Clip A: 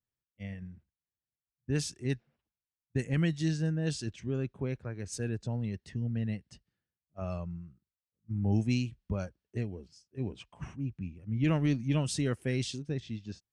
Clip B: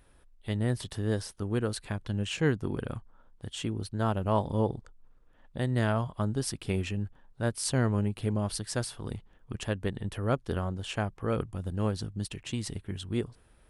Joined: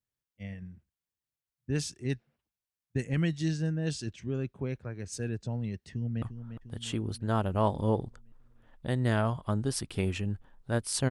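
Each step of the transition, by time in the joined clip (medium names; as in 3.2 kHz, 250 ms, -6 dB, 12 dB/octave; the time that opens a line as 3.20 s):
clip A
5.91–6.22 s: echo throw 350 ms, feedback 60%, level -9.5 dB
6.22 s: go over to clip B from 2.93 s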